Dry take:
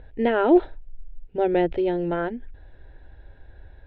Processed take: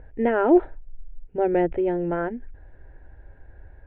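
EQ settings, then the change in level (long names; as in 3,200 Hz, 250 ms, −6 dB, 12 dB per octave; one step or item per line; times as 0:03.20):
low-pass filter 2,300 Hz 24 dB per octave
high-frequency loss of the air 55 metres
0.0 dB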